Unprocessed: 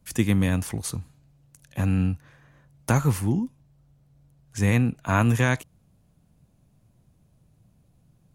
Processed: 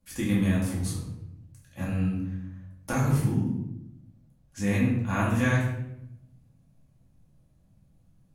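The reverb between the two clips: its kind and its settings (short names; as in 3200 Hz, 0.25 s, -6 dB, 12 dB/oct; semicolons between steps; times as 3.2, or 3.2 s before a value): shoebox room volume 240 m³, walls mixed, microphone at 2.3 m; gain -11 dB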